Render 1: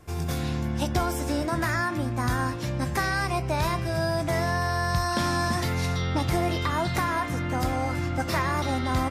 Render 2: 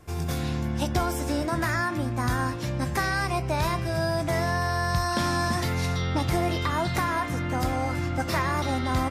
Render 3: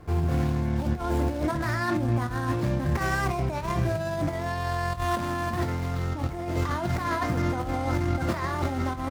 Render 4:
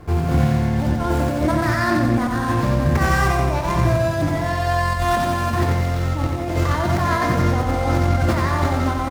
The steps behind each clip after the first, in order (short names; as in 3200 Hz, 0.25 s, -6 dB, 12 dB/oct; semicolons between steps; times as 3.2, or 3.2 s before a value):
nothing audible
median filter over 15 samples; negative-ratio compressor -29 dBFS, ratio -0.5; doubler 26 ms -11 dB; gain +2.5 dB
feedback echo 90 ms, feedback 55%, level -4 dB; gain +6.5 dB